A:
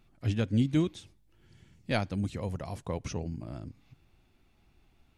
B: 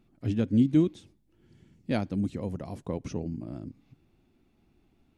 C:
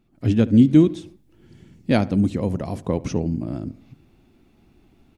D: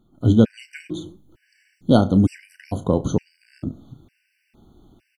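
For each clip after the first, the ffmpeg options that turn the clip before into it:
ffmpeg -i in.wav -af "equalizer=frequency=270:width_type=o:width=2:gain=11.5,volume=-5.5dB" out.wav
ffmpeg -i in.wav -filter_complex "[0:a]dynaudnorm=framelen=110:gausssize=3:maxgain=10dB,asplit=2[link_01][link_02];[link_02]adelay=72,lowpass=frequency=2100:poles=1,volume=-18.5dB,asplit=2[link_03][link_04];[link_04]adelay=72,lowpass=frequency=2100:poles=1,volume=0.53,asplit=2[link_05][link_06];[link_06]adelay=72,lowpass=frequency=2100:poles=1,volume=0.53,asplit=2[link_07][link_08];[link_08]adelay=72,lowpass=frequency=2100:poles=1,volume=0.53[link_09];[link_01][link_03][link_05][link_07][link_09]amix=inputs=5:normalize=0" out.wav
ffmpeg -i in.wav -filter_complex "[0:a]asplit=2[link_01][link_02];[link_02]adelay=32,volume=-12.5dB[link_03];[link_01][link_03]amix=inputs=2:normalize=0,afftfilt=real='re*gt(sin(2*PI*1.1*pts/sr)*(1-2*mod(floor(b*sr/1024/1500),2)),0)':imag='im*gt(sin(2*PI*1.1*pts/sr)*(1-2*mod(floor(b*sr/1024/1500),2)),0)':win_size=1024:overlap=0.75,volume=4dB" out.wav

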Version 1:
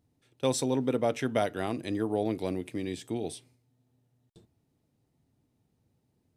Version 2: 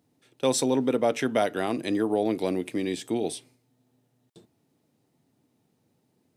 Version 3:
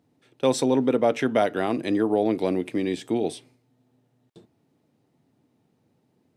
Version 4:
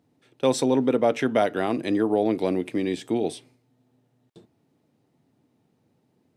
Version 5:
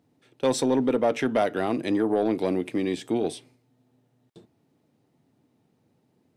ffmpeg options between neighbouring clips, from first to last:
ffmpeg -i in.wav -filter_complex "[0:a]highpass=180,asplit=2[link_01][link_02];[link_02]alimiter=limit=-23dB:level=0:latency=1:release=142,volume=1dB[link_03];[link_01][link_03]amix=inputs=2:normalize=0" out.wav
ffmpeg -i in.wav -af "highshelf=frequency=4900:gain=-10.5,volume=3dB" out.wav
ffmpeg -i in.wav -af anull out.wav
ffmpeg -i in.wav -af "asoftclip=type=tanh:threshold=-13.5dB" out.wav

